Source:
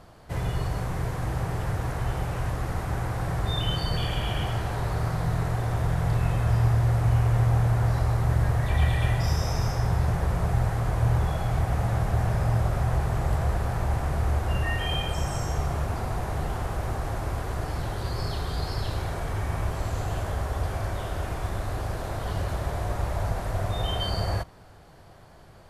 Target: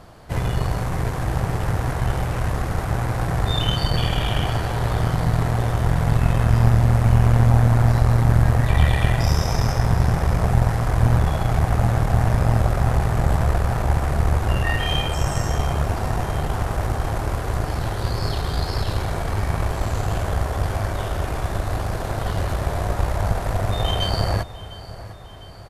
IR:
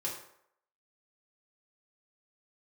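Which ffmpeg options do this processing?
-af "aecho=1:1:703|1406|2109|2812|3515:0.158|0.084|0.0445|0.0236|0.0125,aeval=exprs='0.299*(cos(1*acos(clip(val(0)/0.299,-1,1)))-cos(1*PI/2))+0.0841*(cos(2*acos(clip(val(0)/0.299,-1,1)))-cos(2*PI/2))+0.0119*(cos(6*acos(clip(val(0)/0.299,-1,1)))-cos(6*PI/2))':channel_layout=same,volume=5.5dB"

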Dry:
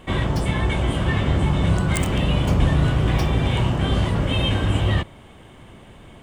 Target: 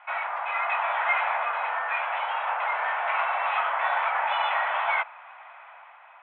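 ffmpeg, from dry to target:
ffmpeg -i in.wav -af "dynaudnorm=framelen=150:gausssize=9:maxgain=7dB,highpass=frequency=440:width_type=q:width=0.5412,highpass=frequency=440:width_type=q:width=1.307,lowpass=frequency=2200:width_type=q:width=0.5176,lowpass=frequency=2200:width_type=q:width=0.7071,lowpass=frequency=2200:width_type=q:width=1.932,afreqshift=320" out.wav

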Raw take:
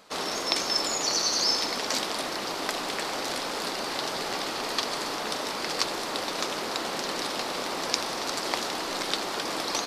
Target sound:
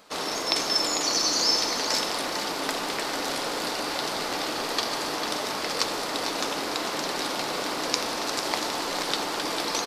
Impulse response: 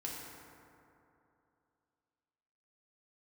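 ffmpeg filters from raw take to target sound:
-filter_complex "[0:a]aecho=1:1:448:0.398,asplit=2[link_01][link_02];[1:a]atrim=start_sample=2205,highshelf=frequency=12000:gain=11[link_03];[link_02][link_03]afir=irnorm=-1:irlink=0,volume=-5dB[link_04];[link_01][link_04]amix=inputs=2:normalize=0,volume=-2dB"

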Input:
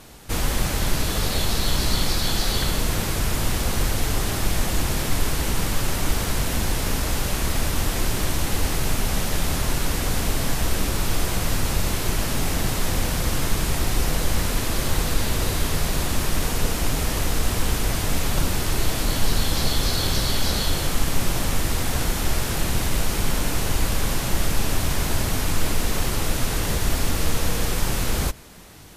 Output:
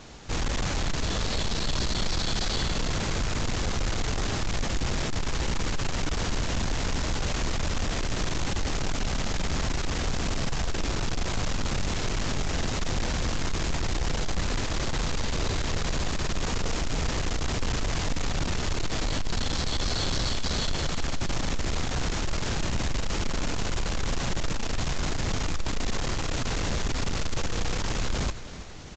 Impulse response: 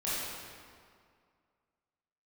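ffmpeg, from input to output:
-af "aresample=16000,asoftclip=type=tanh:threshold=-23dB,aresample=44100,aecho=1:1:326|652|978|1304|1630:0.178|0.096|0.0519|0.028|0.0151"

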